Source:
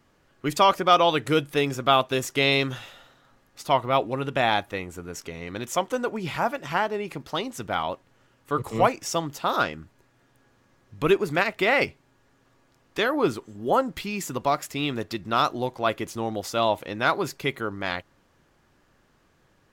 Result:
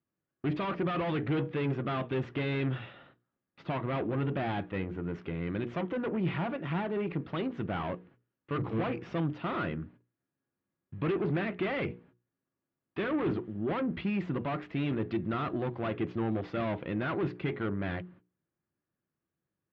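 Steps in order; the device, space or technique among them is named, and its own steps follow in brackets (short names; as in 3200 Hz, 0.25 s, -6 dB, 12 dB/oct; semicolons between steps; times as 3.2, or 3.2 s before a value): gate -54 dBFS, range -26 dB; notches 60/120/180/240/300/360/420/480 Hz; guitar amplifier (tube stage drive 31 dB, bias 0.45; tone controls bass +7 dB, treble -11 dB; speaker cabinet 96–3400 Hz, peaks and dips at 180 Hz +4 dB, 340 Hz +6 dB, 870 Hz -3 dB); high shelf 8900 Hz -5 dB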